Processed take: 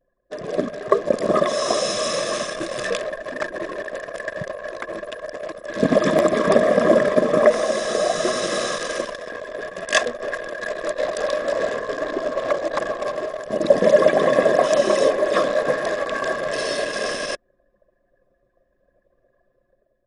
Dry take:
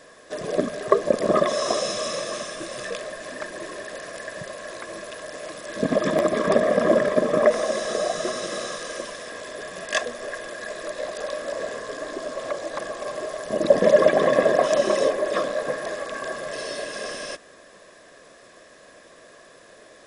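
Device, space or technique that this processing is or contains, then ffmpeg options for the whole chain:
voice memo with heavy noise removal: -af "anlmdn=6.31,dynaudnorm=f=170:g=7:m=7.5dB"

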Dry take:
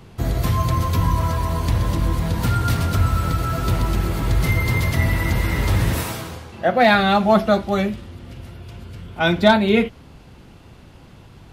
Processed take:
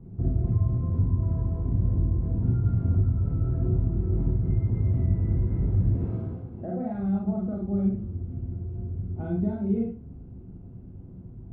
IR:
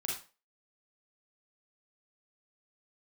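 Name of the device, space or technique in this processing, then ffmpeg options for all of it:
television next door: -filter_complex "[0:a]acompressor=threshold=-22dB:ratio=6,lowpass=280[a];[1:a]atrim=start_sample=2205[b];[a][b]afir=irnorm=-1:irlink=0,volume=1.5dB"

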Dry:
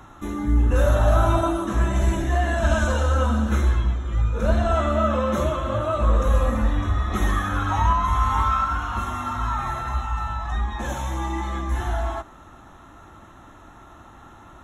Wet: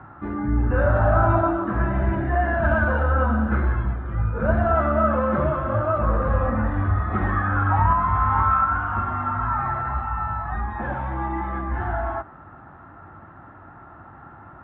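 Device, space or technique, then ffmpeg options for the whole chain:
bass cabinet: -af "highpass=66,equalizer=f=96:t=q:w=4:g=6,equalizer=f=150:t=q:w=4:g=7,equalizer=f=770:t=q:w=4:g=4,equalizer=f=1.5k:t=q:w=4:g=6,lowpass=f=2k:w=0.5412,lowpass=f=2k:w=1.3066"

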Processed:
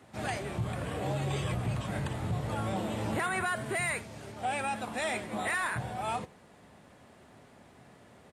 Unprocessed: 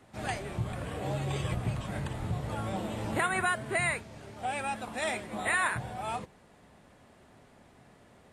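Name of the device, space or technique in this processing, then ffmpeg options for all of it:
soft clipper into limiter: -filter_complex "[0:a]highpass=66,asettb=1/sr,asplit=3[a][b][c];[a]atrim=end=3.564[d];[b]atrim=start=3.56:end=4.32,asetpts=PTS-STARTPTS,afade=t=in:d=0.004:c=qsin,afade=t=out:st=0.756:d=0.004:c=qsin,highshelf=f=6k:g=5.5[e];[c]atrim=start=4.316[f];[d][e]acrossfade=d=0.004:c1=hsin:c2=qsin[g];[g][f]acrossfade=d=0.004:c1=qsin:c2=hsin,aecho=1:1:82:0.0708,asoftclip=type=tanh:threshold=-20dB,alimiter=level_in=2dB:limit=-24dB:level=0:latency=1:release=18,volume=-2dB,volume=2dB"

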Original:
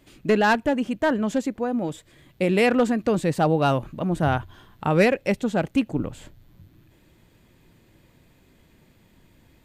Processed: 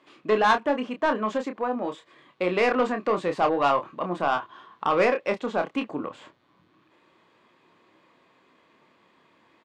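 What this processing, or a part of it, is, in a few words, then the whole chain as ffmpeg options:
intercom: -filter_complex "[0:a]highpass=360,lowpass=3.8k,equalizer=f=1.1k:t=o:w=0.33:g=12,asoftclip=type=tanh:threshold=-14dB,asplit=2[a][b];[b]adelay=28,volume=-7dB[c];[a][c]amix=inputs=2:normalize=0"

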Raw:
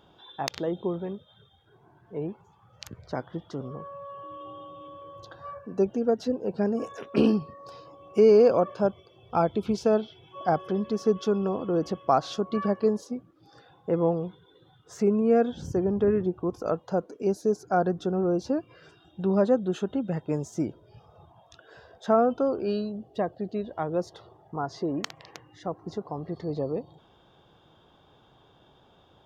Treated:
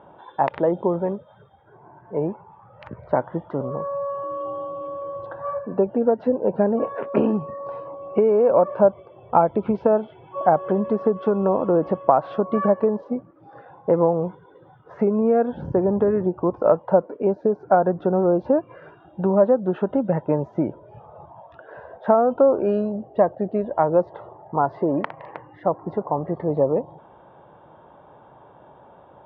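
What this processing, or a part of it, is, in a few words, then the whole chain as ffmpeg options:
bass amplifier: -af "acompressor=threshold=-24dB:ratio=6,highpass=66,equalizer=f=91:t=q:w=4:g=-5,equalizer=f=580:t=q:w=4:g=9,equalizer=f=920:t=q:w=4:g=9,lowpass=f=2.1k:w=0.5412,lowpass=f=2.1k:w=1.3066,volume=7dB"

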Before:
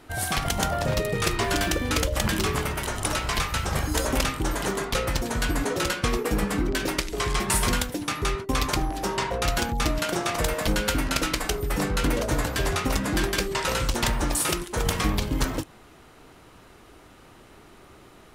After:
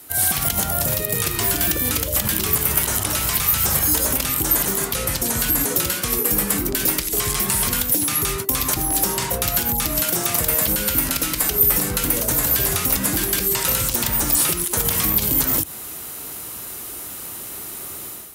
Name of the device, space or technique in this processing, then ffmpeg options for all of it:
FM broadcast chain: -filter_complex "[0:a]acrossover=split=4500[a][b];[b]acompressor=threshold=-41dB:ratio=4:attack=1:release=60[c];[a][c]amix=inputs=2:normalize=0,highpass=58,dynaudnorm=f=110:g=5:m=10.5dB,acrossover=split=100|250|7500[d][e][f][g];[d]acompressor=threshold=-27dB:ratio=4[h];[e]acompressor=threshold=-26dB:ratio=4[i];[f]acompressor=threshold=-24dB:ratio=4[j];[g]acompressor=threshold=-40dB:ratio=4[k];[h][i][j][k]amix=inputs=4:normalize=0,aemphasis=mode=production:type=50fm,alimiter=limit=-13dB:level=0:latency=1:release=58,asoftclip=type=hard:threshold=-16dB,lowpass=f=15k:w=0.5412,lowpass=f=15k:w=1.3066,aemphasis=mode=production:type=50fm,asettb=1/sr,asplit=3[l][m][n];[l]atrim=end=4.964[o];[m]atrim=start=4.96:end=5.39,asetpts=PTS-STARTPTS,afade=t=in:d=0.004:c=qsin,afade=t=out:st=0.426:d=0.004:c=qsin,lowpass=12k[p];[n]atrim=start=5.386[q];[o][p]acrossfade=d=0.004:c1=hsin:c2=qsin[r];[r][q]acrossfade=d=0.004:c1=qsin:c2=hsin,volume=-1.5dB"

